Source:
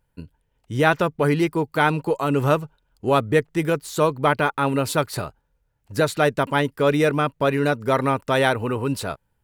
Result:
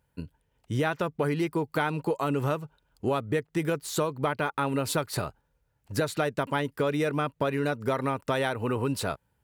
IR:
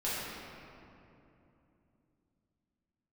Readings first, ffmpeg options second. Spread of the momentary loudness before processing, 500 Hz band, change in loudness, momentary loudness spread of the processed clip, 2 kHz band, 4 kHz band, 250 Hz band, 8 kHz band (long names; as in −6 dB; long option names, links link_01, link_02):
8 LU, −7.5 dB, −7.5 dB, 6 LU, −8.5 dB, −6.5 dB, −6.5 dB, −3.5 dB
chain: -af "highpass=50,acompressor=threshold=-24dB:ratio=6"